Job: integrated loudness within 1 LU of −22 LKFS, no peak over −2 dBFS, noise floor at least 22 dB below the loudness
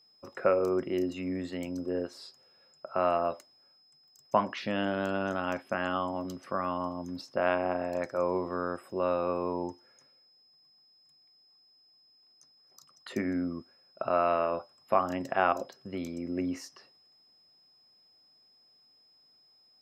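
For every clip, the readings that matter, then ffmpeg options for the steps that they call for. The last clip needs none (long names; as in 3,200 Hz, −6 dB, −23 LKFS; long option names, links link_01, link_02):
interfering tone 5,100 Hz; level of the tone −61 dBFS; integrated loudness −31.5 LKFS; sample peak −10.0 dBFS; target loudness −22.0 LKFS
→ -af "bandreject=frequency=5100:width=30"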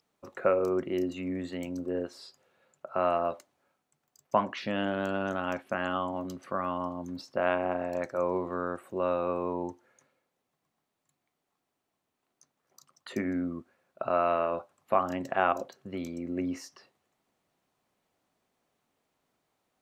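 interfering tone none found; integrated loudness −31.5 LKFS; sample peak −10.0 dBFS; target loudness −22.0 LKFS
→ -af "volume=9.5dB,alimiter=limit=-2dB:level=0:latency=1"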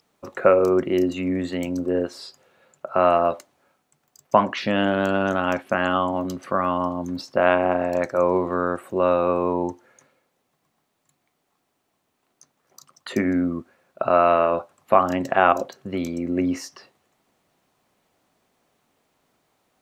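integrated loudness −22.0 LKFS; sample peak −2.0 dBFS; background noise floor −73 dBFS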